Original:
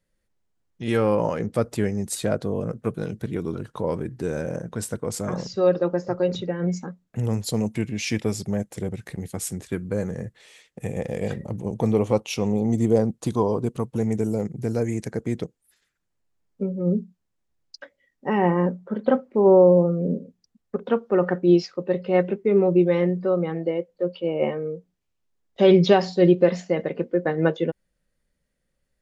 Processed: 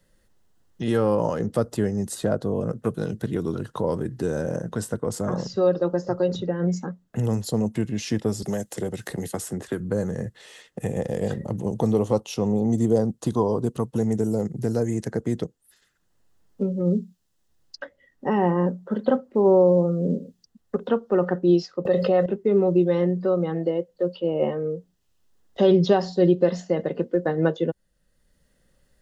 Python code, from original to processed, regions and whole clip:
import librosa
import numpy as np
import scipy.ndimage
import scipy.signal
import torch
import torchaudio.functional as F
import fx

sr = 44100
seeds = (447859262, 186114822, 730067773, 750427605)

y = fx.chain(x, sr, fx.bass_treble(bass_db=-7, treble_db=3),
    fx.band_squash(depth_pct=70), at=(8.42, 9.8))
y = fx.chain(y, sr, fx.low_shelf(hz=170.0, db=-11.0),
    fx.comb(ms=1.6, depth=0.38),
    fx.env_flatten(amount_pct=70), at=(21.85, 22.26))
y = fx.notch(y, sr, hz=2300.0, q=5.9)
y = fx.dynamic_eq(y, sr, hz=2300.0, q=1.5, threshold_db=-45.0, ratio=4.0, max_db=-6)
y = fx.band_squash(y, sr, depth_pct=40)